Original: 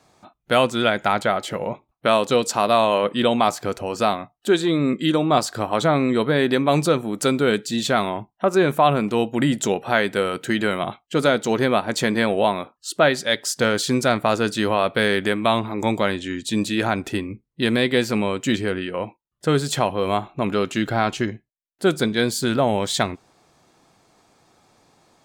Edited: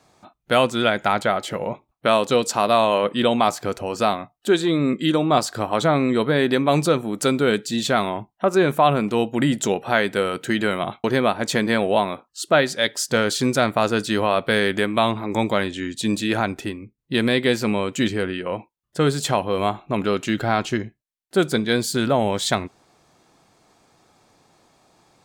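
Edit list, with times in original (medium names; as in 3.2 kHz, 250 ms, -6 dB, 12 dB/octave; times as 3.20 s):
11.04–11.52 s: delete
16.88–17.46 s: fade out, to -10 dB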